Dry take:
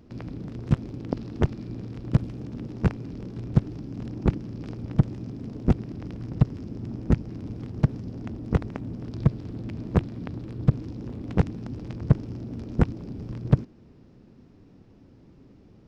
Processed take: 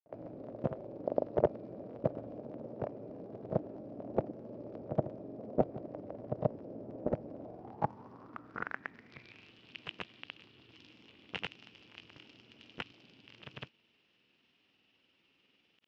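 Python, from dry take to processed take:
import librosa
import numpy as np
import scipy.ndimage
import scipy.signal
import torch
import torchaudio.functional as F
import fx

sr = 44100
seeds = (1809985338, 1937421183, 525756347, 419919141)

y = fx.granulator(x, sr, seeds[0], grain_ms=100.0, per_s=20.0, spray_ms=100.0, spread_st=0)
y = fx.filter_sweep_bandpass(y, sr, from_hz=600.0, to_hz=2900.0, start_s=7.36, end_s=9.56, q=5.4)
y = F.gain(torch.from_numpy(y), 11.0).numpy()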